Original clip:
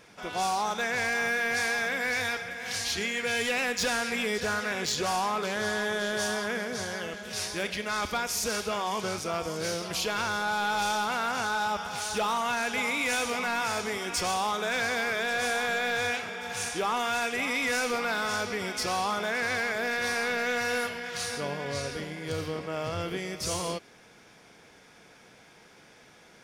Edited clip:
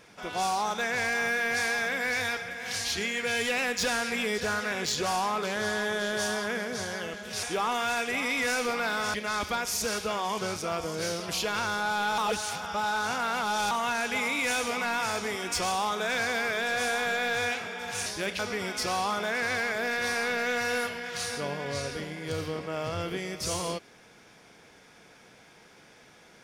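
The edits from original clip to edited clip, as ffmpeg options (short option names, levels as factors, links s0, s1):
-filter_complex "[0:a]asplit=7[s0][s1][s2][s3][s4][s5][s6];[s0]atrim=end=7.432[s7];[s1]atrim=start=16.678:end=18.392[s8];[s2]atrim=start=7.758:end=10.802[s9];[s3]atrim=start=10.798:end=12.332,asetpts=PTS-STARTPTS,areverse[s10];[s4]atrim=start=12.328:end=16.682[s11];[s5]atrim=start=7.428:end=7.762[s12];[s6]atrim=start=18.388[s13];[s7][s8]acrossfade=d=0.004:c1=hsin:c2=hsin[s14];[s14][s9]acrossfade=d=0.004:c1=hsin:c2=hsin[s15];[s15][s10]acrossfade=d=0.004:c1=hsin:c2=hsin[s16];[s16][s11]acrossfade=d=0.004:c1=hsin:c2=hsin[s17];[s17][s12]acrossfade=d=0.004:c1=hsin:c2=hsin[s18];[s18][s13]acrossfade=d=0.004:c1=hsin:c2=hsin"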